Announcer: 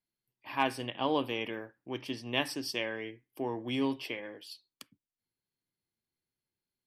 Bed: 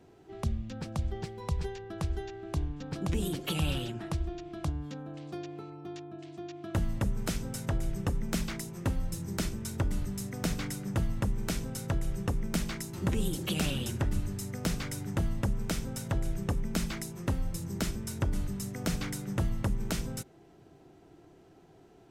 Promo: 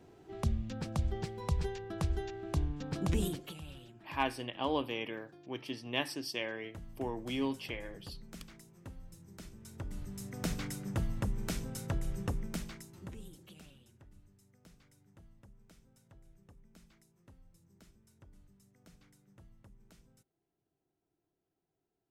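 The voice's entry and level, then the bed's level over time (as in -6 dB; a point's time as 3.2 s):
3.60 s, -3.0 dB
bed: 3.24 s -0.5 dB
3.6 s -18 dB
9.39 s -18 dB
10.44 s -4 dB
12.31 s -4 dB
13.86 s -29 dB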